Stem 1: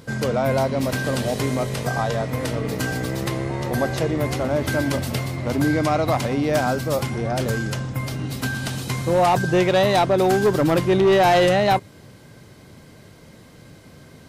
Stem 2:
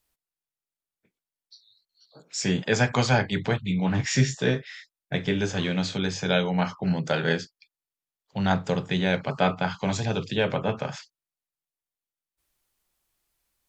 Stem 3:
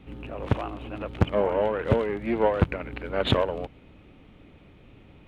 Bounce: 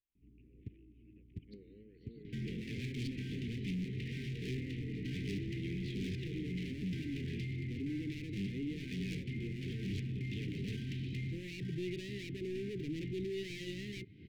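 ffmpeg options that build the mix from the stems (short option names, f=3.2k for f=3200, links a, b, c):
-filter_complex "[0:a]adelay=2250,volume=-4dB[a];[1:a]alimiter=limit=-19.5dB:level=0:latency=1:release=49,aeval=exprs='val(0)*pow(10,-21*if(lt(mod(-1.3*n/s,1),2*abs(-1.3)/1000),1-mod(-1.3*n/s,1)/(2*abs(-1.3)/1000),(mod(-1.3*n/s,1)-2*abs(-1.3)/1000)/(1-2*abs(-1.3)/1000))/20)':c=same,volume=1.5dB,asplit=2[b][c];[2:a]tiltshelf=f=720:g=5.5,adelay=150,volume=-16.5dB[d];[c]apad=whole_len=239425[e];[d][e]sidechaingate=range=-10dB:threshold=-49dB:ratio=16:detection=peak[f];[a][f]amix=inputs=2:normalize=0,acompressor=threshold=-35dB:ratio=3,volume=0dB[g];[b][g]amix=inputs=2:normalize=0,lowpass=f=2.9k:w=0.5412,lowpass=f=2.9k:w=1.3066,volume=35dB,asoftclip=hard,volume=-35dB,asuperstop=centerf=900:order=12:qfactor=0.55"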